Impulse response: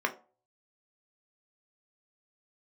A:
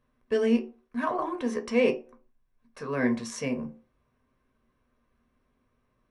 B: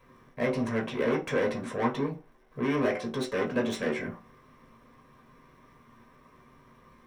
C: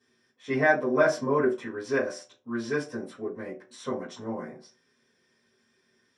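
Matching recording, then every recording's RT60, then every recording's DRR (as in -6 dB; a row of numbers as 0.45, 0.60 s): A; 0.40, 0.40, 0.40 s; 3.5, -2.5, -12.0 dB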